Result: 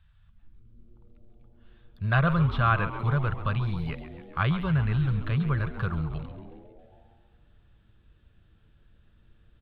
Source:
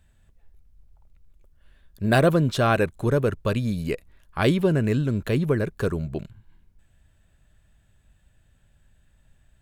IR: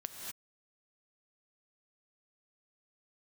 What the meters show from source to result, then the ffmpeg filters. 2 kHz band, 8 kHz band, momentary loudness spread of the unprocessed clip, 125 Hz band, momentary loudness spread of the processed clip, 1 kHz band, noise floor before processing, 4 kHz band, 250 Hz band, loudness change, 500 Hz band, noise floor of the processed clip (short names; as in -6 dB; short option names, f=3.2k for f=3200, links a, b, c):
-2.0 dB, under -30 dB, 11 LU, 0.0 dB, 12 LU, -1.0 dB, -62 dBFS, -7.0 dB, -6.5 dB, -3.5 dB, -13.5 dB, -61 dBFS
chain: -filter_complex "[0:a]acrossover=split=2600[a][b];[b]acompressor=threshold=-44dB:ratio=4:attack=1:release=60[c];[a][c]amix=inputs=2:normalize=0,firequalizer=gain_entry='entry(160,0);entry(250,-22);entry(1200,4);entry(1800,-4);entry(3400,1);entry(6900,-26);entry(11000,-21)':delay=0.05:min_phase=1,asplit=9[d][e][f][g][h][i][j][k][l];[e]adelay=136,afreqshift=-120,volume=-11.5dB[m];[f]adelay=272,afreqshift=-240,volume=-15.5dB[n];[g]adelay=408,afreqshift=-360,volume=-19.5dB[o];[h]adelay=544,afreqshift=-480,volume=-23.5dB[p];[i]adelay=680,afreqshift=-600,volume=-27.6dB[q];[j]adelay=816,afreqshift=-720,volume=-31.6dB[r];[k]adelay=952,afreqshift=-840,volume=-35.6dB[s];[l]adelay=1088,afreqshift=-960,volume=-39.6dB[t];[d][m][n][o][p][q][r][s][t]amix=inputs=9:normalize=0"